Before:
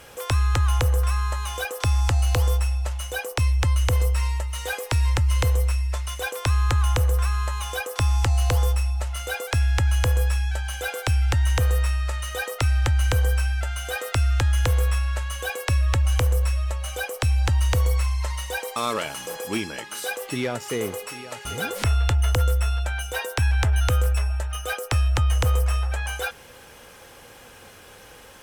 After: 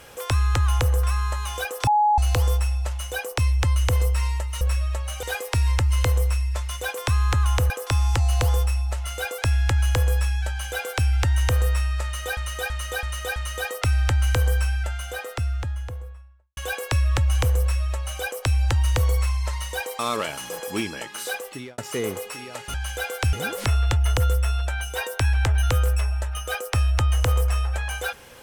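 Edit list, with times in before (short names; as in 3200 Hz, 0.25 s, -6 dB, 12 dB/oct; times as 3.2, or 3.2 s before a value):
1.87–2.18 bleep 839 Hz -15 dBFS
7.08–7.79 cut
10.58–11.17 copy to 21.51
12.13–12.46 loop, 5 plays
13.35–15.34 studio fade out
16.37–16.99 copy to 4.61
20.08–20.55 fade out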